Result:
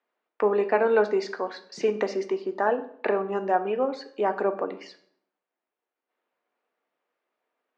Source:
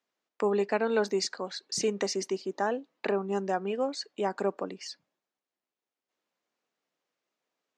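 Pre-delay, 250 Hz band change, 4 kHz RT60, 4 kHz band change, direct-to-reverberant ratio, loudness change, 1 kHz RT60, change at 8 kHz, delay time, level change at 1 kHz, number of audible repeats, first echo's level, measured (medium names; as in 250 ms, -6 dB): 3 ms, +1.5 dB, 0.45 s, -7.0 dB, 8.0 dB, +4.5 dB, 0.55 s, under -10 dB, no echo, +6.0 dB, no echo, no echo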